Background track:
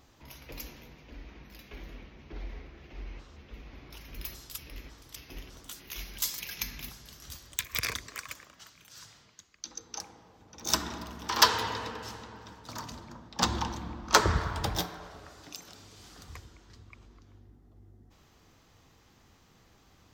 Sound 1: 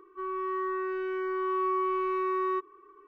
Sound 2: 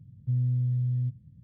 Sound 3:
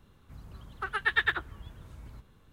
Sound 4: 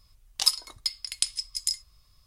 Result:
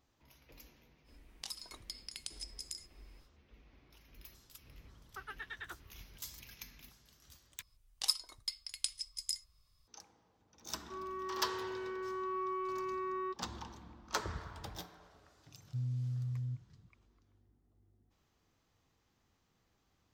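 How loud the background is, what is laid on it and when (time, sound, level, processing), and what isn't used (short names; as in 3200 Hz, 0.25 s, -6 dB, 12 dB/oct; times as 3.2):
background track -15 dB
1.04 add 4 -6 dB, fades 0.05 s + compressor, threshold -34 dBFS
4.34 add 3 -13 dB + limiter -21.5 dBFS
7.62 replace with 4 -10 dB
10.73 add 1 -9.5 dB
15.46 add 2 -10.5 dB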